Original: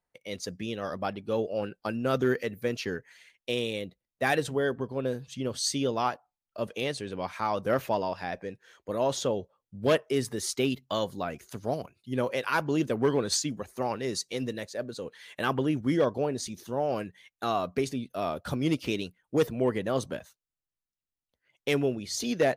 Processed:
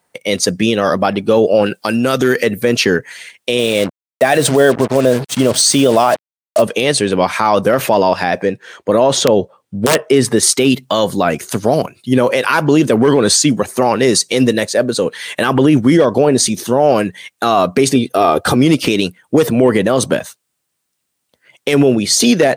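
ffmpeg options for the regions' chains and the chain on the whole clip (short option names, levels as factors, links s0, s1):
-filter_complex "[0:a]asettb=1/sr,asplit=3[s0][s1][s2];[s0]atrim=end=1.664[s3];[s1]atrim=start=1.66:end=2.4,asetpts=PTS-STARTPTS,afade=t=in:d=0.004:c=qsin,afade=t=out:st=0.736:d=0.004:c=qsin,highshelf=f=2300:g=9.5,acompressor=threshold=0.0224:ratio=2.5:attack=3.2:release=140:knee=1:detection=peak[s4];[s2]atrim=start=2.396[s5];[s3][s4]acrossfade=d=0.004:c1=hsin:c2=qsin[s6];[s6][s5]acrossfade=d=0.004:c1=qsin:c2=hsin,asettb=1/sr,asplit=3[s7][s8][s9];[s7]atrim=end=3.594[s10];[s8]atrim=start=3.59:end=6.62,asetpts=PTS-STARTPTS,afade=t=in:d=0.004:c=qsin,afade=t=out:st=3.026:d=0.004:c=qsin,equalizer=f=640:t=o:w=0.24:g=11,aeval=exprs='val(0)+0.000891*(sin(2*PI*60*n/s)+sin(2*PI*2*60*n/s)/2+sin(2*PI*3*60*n/s)/3+sin(2*PI*4*60*n/s)/4+sin(2*PI*5*60*n/s)/5)':c=same,acrusher=bits=6:mix=0:aa=0.5[s11];[s9]atrim=start=6.616[s12];[s10][s11]acrossfade=d=0.004:c1=hsin:c2=qsin[s13];[s13][s12]acrossfade=d=0.004:c1=qsin:c2=hsin,asettb=1/sr,asplit=3[s14][s15][s16];[s14]atrim=end=8.454[s17];[s15]atrim=start=8.45:end=10.43,asetpts=PTS-STARTPTS,afade=t=in:d=0.004:c=qsin,afade=t=out:st=1.976:d=0.004:c=qsin,highshelf=f=5700:g=-9,aeval=exprs='(mod(6.31*val(0)+1,2)-1)/6.31':c=same[s18];[s16]atrim=start=10.426[s19];[s17][s18]acrossfade=d=0.004:c1=hsin:c2=qsin[s20];[s20][s19]acrossfade=d=0.004:c1=qsin:c2=hsin,asettb=1/sr,asplit=3[s21][s22][s23];[s21]atrim=end=17.954[s24];[s22]atrim=start=17.95:end=18.56,asetpts=PTS-STARTPTS,afade=t=in:d=0.004:c=qsin,afade=t=out:st=0.606:d=0.004:c=qsin,equalizer=f=560:w=0.53:g=3.5,aecho=1:1:2.5:0.48,atrim=end_sample=26901[s25];[s23]atrim=start=18.556[s26];[s24][s25]acrossfade=d=0.004:c1=hsin:c2=qsin[s27];[s27][s26]acrossfade=d=0.004:c1=qsin:c2=hsin,highpass=130,equalizer=f=8700:t=o:w=0.27:g=7,alimiter=level_in=14.1:limit=0.891:release=50:level=0:latency=1,volume=0.891"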